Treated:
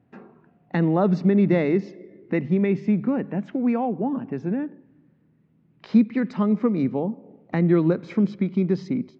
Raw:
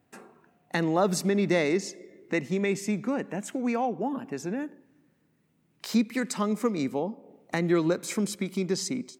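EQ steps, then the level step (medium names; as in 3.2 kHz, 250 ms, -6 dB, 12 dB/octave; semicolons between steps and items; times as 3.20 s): Gaussian low-pass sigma 2.6 samples; peaking EQ 130 Hz +10.5 dB 2.5 oct; hum notches 50/100/150 Hz; 0.0 dB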